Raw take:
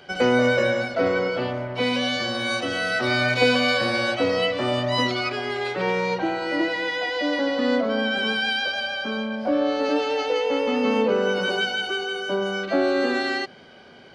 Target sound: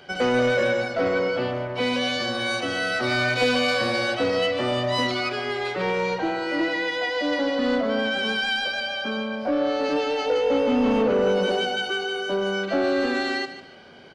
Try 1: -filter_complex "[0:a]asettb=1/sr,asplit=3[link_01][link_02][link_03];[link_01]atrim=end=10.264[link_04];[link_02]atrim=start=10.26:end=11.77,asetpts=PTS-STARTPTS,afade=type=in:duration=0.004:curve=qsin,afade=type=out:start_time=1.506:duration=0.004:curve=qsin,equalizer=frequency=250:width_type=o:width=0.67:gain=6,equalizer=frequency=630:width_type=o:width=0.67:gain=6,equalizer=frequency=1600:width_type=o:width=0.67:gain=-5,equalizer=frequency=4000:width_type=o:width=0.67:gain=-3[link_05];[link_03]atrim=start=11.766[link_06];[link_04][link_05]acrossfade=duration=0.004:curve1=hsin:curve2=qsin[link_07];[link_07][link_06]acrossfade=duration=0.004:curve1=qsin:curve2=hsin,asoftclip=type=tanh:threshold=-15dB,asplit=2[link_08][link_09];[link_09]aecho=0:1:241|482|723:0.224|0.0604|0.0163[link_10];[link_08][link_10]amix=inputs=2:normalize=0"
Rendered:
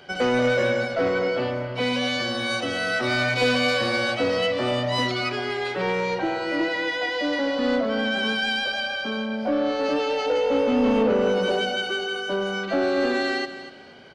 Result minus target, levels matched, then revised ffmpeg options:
echo 93 ms late
-filter_complex "[0:a]asettb=1/sr,asplit=3[link_01][link_02][link_03];[link_01]atrim=end=10.264[link_04];[link_02]atrim=start=10.26:end=11.77,asetpts=PTS-STARTPTS,afade=type=in:duration=0.004:curve=qsin,afade=type=out:start_time=1.506:duration=0.004:curve=qsin,equalizer=frequency=250:width_type=o:width=0.67:gain=6,equalizer=frequency=630:width_type=o:width=0.67:gain=6,equalizer=frequency=1600:width_type=o:width=0.67:gain=-5,equalizer=frequency=4000:width_type=o:width=0.67:gain=-3[link_05];[link_03]atrim=start=11.766[link_06];[link_04][link_05]acrossfade=duration=0.004:curve1=hsin:curve2=qsin[link_07];[link_07][link_06]acrossfade=duration=0.004:curve1=qsin:curve2=hsin,asoftclip=type=tanh:threshold=-15dB,asplit=2[link_08][link_09];[link_09]aecho=0:1:148|296|444:0.224|0.0604|0.0163[link_10];[link_08][link_10]amix=inputs=2:normalize=0"

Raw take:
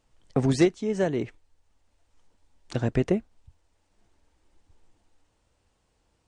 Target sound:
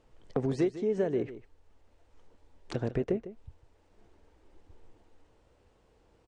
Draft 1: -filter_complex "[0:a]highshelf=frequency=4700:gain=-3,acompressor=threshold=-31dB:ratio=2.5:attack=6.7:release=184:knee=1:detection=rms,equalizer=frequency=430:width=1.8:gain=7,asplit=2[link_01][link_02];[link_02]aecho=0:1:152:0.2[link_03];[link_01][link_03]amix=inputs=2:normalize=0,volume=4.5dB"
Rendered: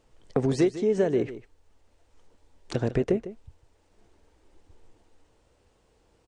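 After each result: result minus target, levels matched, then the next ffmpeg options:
8,000 Hz band +5.5 dB; downward compressor: peak gain reduction −5.5 dB
-filter_complex "[0:a]highshelf=frequency=4700:gain=-12.5,acompressor=threshold=-31dB:ratio=2.5:attack=6.7:release=184:knee=1:detection=rms,equalizer=frequency=430:width=1.8:gain=7,asplit=2[link_01][link_02];[link_02]aecho=0:1:152:0.2[link_03];[link_01][link_03]amix=inputs=2:normalize=0,volume=4.5dB"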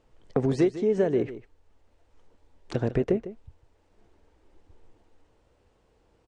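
downward compressor: peak gain reduction −5.5 dB
-filter_complex "[0:a]highshelf=frequency=4700:gain=-12.5,acompressor=threshold=-40dB:ratio=2.5:attack=6.7:release=184:knee=1:detection=rms,equalizer=frequency=430:width=1.8:gain=7,asplit=2[link_01][link_02];[link_02]aecho=0:1:152:0.2[link_03];[link_01][link_03]amix=inputs=2:normalize=0,volume=4.5dB"

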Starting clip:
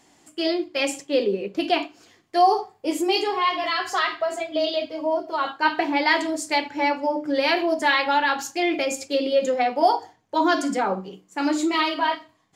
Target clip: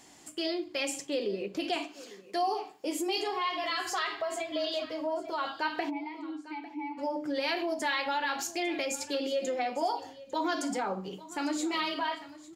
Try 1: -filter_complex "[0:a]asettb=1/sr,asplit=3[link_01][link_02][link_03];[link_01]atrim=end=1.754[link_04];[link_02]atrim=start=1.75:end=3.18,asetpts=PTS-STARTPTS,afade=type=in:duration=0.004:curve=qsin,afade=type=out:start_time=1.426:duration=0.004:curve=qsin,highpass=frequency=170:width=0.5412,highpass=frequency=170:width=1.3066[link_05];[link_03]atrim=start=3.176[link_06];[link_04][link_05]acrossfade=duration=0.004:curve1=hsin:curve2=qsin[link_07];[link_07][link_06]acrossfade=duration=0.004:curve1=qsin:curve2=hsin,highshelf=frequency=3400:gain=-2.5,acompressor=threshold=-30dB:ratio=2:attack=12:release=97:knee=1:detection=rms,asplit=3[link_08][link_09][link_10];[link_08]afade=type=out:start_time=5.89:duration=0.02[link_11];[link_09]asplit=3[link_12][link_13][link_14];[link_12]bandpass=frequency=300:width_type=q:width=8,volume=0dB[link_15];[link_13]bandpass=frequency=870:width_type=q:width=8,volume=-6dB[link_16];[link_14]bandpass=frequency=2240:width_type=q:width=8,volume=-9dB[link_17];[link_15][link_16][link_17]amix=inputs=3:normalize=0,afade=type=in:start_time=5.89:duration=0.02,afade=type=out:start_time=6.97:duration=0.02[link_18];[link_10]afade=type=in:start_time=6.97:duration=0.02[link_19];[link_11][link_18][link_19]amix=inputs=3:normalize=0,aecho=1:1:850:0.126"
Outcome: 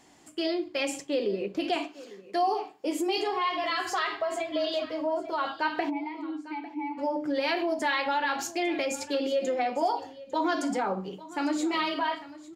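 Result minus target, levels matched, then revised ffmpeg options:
8,000 Hz band −4.5 dB; downward compressor: peak gain reduction −4 dB
-filter_complex "[0:a]asettb=1/sr,asplit=3[link_01][link_02][link_03];[link_01]atrim=end=1.754[link_04];[link_02]atrim=start=1.75:end=3.18,asetpts=PTS-STARTPTS,afade=type=in:duration=0.004:curve=qsin,afade=type=out:start_time=1.426:duration=0.004:curve=qsin,highpass=frequency=170:width=0.5412,highpass=frequency=170:width=1.3066[link_05];[link_03]atrim=start=3.176[link_06];[link_04][link_05]acrossfade=duration=0.004:curve1=hsin:curve2=qsin[link_07];[link_07][link_06]acrossfade=duration=0.004:curve1=qsin:curve2=hsin,highshelf=frequency=3400:gain=5,acompressor=threshold=-37.5dB:ratio=2:attack=12:release=97:knee=1:detection=rms,asplit=3[link_08][link_09][link_10];[link_08]afade=type=out:start_time=5.89:duration=0.02[link_11];[link_09]asplit=3[link_12][link_13][link_14];[link_12]bandpass=frequency=300:width_type=q:width=8,volume=0dB[link_15];[link_13]bandpass=frequency=870:width_type=q:width=8,volume=-6dB[link_16];[link_14]bandpass=frequency=2240:width_type=q:width=8,volume=-9dB[link_17];[link_15][link_16][link_17]amix=inputs=3:normalize=0,afade=type=in:start_time=5.89:duration=0.02,afade=type=out:start_time=6.97:duration=0.02[link_18];[link_10]afade=type=in:start_time=6.97:duration=0.02[link_19];[link_11][link_18][link_19]amix=inputs=3:normalize=0,aecho=1:1:850:0.126"

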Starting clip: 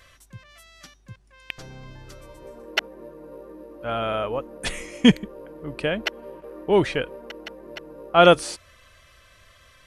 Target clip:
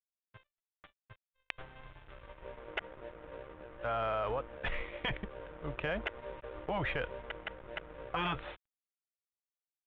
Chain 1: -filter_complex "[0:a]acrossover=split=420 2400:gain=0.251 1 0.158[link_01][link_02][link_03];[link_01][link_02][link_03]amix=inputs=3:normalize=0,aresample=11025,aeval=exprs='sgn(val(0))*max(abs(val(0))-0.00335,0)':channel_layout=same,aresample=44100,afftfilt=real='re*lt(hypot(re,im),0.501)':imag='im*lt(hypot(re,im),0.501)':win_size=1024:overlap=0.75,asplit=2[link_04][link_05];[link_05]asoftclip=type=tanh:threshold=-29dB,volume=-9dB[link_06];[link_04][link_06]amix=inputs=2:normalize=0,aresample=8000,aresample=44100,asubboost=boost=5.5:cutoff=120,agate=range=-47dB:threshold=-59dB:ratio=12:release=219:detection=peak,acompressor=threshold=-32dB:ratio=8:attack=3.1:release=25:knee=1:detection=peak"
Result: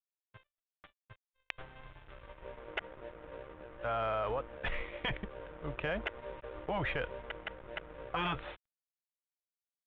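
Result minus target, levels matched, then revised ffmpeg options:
soft clipping: distortion +9 dB
-filter_complex "[0:a]acrossover=split=420 2400:gain=0.251 1 0.158[link_01][link_02][link_03];[link_01][link_02][link_03]amix=inputs=3:normalize=0,aresample=11025,aeval=exprs='sgn(val(0))*max(abs(val(0))-0.00335,0)':channel_layout=same,aresample=44100,afftfilt=real='re*lt(hypot(re,im),0.501)':imag='im*lt(hypot(re,im),0.501)':win_size=1024:overlap=0.75,asplit=2[link_04][link_05];[link_05]asoftclip=type=tanh:threshold=-19.5dB,volume=-9dB[link_06];[link_04][link_06]amix=inputs=2:normalize=0,aresample=8000,aresample=44100,asubboost=boost=5.5:cutoff=120,agate=range=-47dB:threshold=-59dB:ratio=12:release=219:detection=peak,acompressor=threshold=-32dB:ratio=8:attack=3.1:release=25:knee=1:detection=peak"

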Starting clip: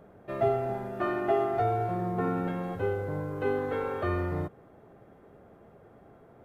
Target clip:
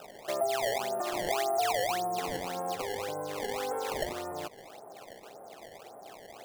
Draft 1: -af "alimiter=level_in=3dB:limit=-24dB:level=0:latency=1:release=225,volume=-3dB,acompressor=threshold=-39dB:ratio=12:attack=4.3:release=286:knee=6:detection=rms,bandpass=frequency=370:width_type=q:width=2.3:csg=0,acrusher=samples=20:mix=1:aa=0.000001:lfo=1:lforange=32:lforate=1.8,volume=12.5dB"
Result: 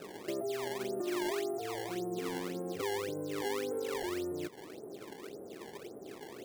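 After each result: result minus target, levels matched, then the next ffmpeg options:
downward compressor: peak gain reduction +5.5 dB; 1,000 Hz band −5.0 dB
-af "alimiter=level_in=3dB:limit=-24dB:level=0:latency=1:release=225,volume=-3dB,acompressor=threshold=-32.5dB:ratio=12:attack=4.3:release=286:knee=6:detection=rms,bandpass=frequency=370:width_type=q:width=2.3:csg=0,acrusher=samples=20:mix=1:aa=0.000001:lfo=1:lforange=32:lforate=1.8,volume=12.5dB"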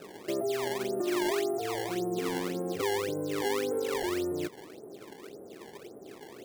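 1,000 Hz band −6.5 dB
-af "alimiter=level_in=3dB:limit=-24dB:level=0:latency=1:release=225,volume=-3dB,acompressor=threshold=-32.5dB:ratio=12:attack=4.3:release=286:knee=6:detection=rms,bandpass=frequency=760:width_type=q:width=2.3:csg=0,acrusher=samples=20:mix=1:aa=0.000001:lfo=1:lforange=32:lforate=1.8,volume=12.5dB"

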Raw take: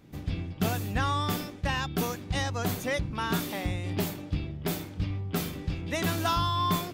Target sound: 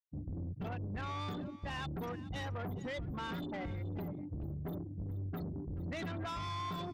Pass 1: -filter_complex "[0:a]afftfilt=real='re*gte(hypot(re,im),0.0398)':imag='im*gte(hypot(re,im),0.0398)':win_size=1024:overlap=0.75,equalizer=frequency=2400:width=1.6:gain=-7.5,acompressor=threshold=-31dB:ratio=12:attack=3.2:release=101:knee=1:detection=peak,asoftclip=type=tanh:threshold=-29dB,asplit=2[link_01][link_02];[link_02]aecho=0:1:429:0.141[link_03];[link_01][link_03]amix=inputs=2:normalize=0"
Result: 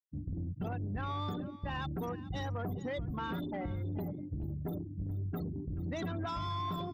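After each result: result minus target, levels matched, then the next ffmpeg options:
soft clipping: distortion −9 dB; 2,000 Hz band −3.0 dB
-filter_complex "[0:a]afftfilt=real='re*gte(hypot(re,im),0.0398)':imag='im*gte(hypot(re,im),0.0398)':win_size=1024:overlap=0.75,equalizer=frequency=2400:width=1.6:gain=-7.5,acompressor=threshold=-31dB:ratio=12:attack=3.2:release=101:knee=1:detection=peak,asoftclip=type=tanh:threshold=-36dB,asplit=2[link_01][link_02];[link_02]aecho=0:1:429:0.141[link_03];[link_01][link_03]amix=inputs=2:normalize=0"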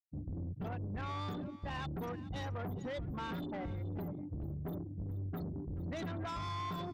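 2,000 Hz band −2.5 dB
-filter_complex "[0:a]afftfilt=real='re*gte(hypot(re,im),0.0398)':imag='im*gte(hypot(re,im),0.0398)':win_size=1024:overlap=0.75,acompressor=threshold=-31dB:ratio=12:attack=3.2:release=101:knee=1:detection=peak,asoftclip=type=tanh:threshold=-36dB,asplit=2[link_01][link_02];[link_02]aecho=0:1:429:0.141[link_03];[link_01][link_03]amix=inputs=2:normalize=0"

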